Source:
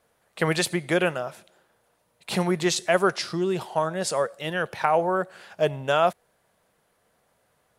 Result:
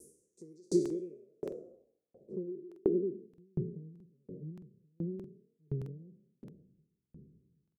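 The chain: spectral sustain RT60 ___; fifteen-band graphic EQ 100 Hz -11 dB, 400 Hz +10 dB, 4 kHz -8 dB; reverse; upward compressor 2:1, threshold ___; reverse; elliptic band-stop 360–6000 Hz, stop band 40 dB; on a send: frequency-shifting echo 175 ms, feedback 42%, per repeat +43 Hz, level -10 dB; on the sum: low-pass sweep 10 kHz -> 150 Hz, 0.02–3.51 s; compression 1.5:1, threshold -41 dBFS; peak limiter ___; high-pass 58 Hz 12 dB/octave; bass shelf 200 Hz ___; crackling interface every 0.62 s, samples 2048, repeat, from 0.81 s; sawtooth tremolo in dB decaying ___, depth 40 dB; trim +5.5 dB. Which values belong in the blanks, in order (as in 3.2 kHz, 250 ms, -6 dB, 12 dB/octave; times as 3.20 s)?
0.72 s, -21 dBFS, -18.5 dBFS, -2.5 dB, 1.4 Hz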